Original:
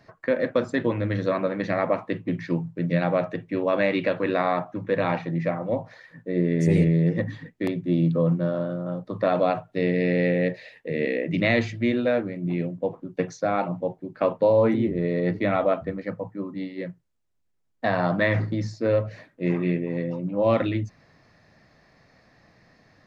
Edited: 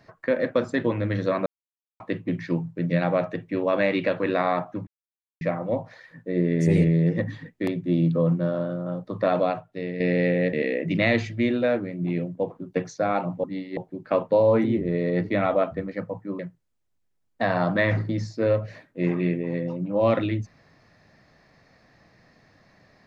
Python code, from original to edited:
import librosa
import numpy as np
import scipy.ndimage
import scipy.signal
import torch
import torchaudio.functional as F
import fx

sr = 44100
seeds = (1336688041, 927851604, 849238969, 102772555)

y = fx.edit(x, sr, fx.silence(start_s=1.46, length_s=0.54),
    fx.silence(start_s=4.87, length_s=0.54),
    fx.fade_out_to(start_s=9.37, length_s=0.63, curve='qua', floor_db=-8.5),
    fx.cut(start_s=10.53, length_s=0.43),
    fx.move(start_s=16.49, length_s=0.33, to_s=13.87), tone=tone)